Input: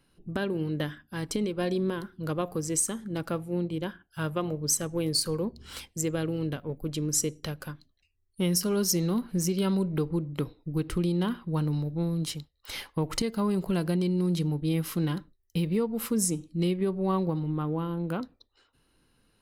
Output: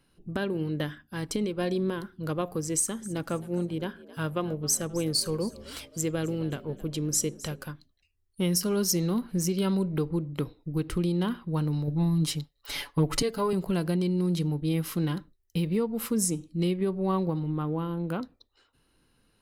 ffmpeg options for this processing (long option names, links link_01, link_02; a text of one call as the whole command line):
ffmpeg -i in.wav -filter_complex "[0:a]asettb=1/sr,asplit=3[link_01][link_02][link_03];[link_01]atrim=end=2.754[link_04];[link_02]atrim=start=2.75:end=7.64,asetpts=PTS-STARTPTS,afade=type=in:duration=0.004:curve=qsin,afade=type=out:start_time=4.886:duration=0.004:curve=qsin,asplit=4[link_05][link_06][link_07][link_08];[link_06]adelay=264,afreqshift=57,volume=-18.5dB[link_09];[link_07]adelay=528,afreqshift=114,volume=-25.8dB[link_10];[link_08]adelay=792,afreqshift=171,volume=-33.2dB[link_11];[link_05][link_09][link_10][link_11]amix=inputs=4:normalize=0,atrim=end_sample=215649[link_12];[link_03]atrim=start=7.636[link_13];[link_04][link_12]acrossfade=duration=0.004:curve1=hsin:curve2=qsin[link_14];[link_14][link_13]acrossfade=duration=0.004:curve1=qsin:curve2=hsin,asettb=1/sr,asplit=3[link_15][link_16][link_17];[link_15]atrim=end=11.874[link_18];[link_16]atrim=start=11.87:end=13.53,asetpts=PTS-STARTPTS,afade=type=in:duration=0.004:curve=qsin,afade=type=out:start_time=1.656:duration=0.004:curve=qsin,aecho=1:1:7:1,atrim=end_sample=73206[link_19];[link_17]atrim=start=13.526[link_20];[link_18][link_19]acrossfade=duration=0.004:curve1=hsin:curve2=qsin[link_21];[link_21][link_20]acrossfade=duration=0.004:curve1=qsin:curve2=hsin" out.wav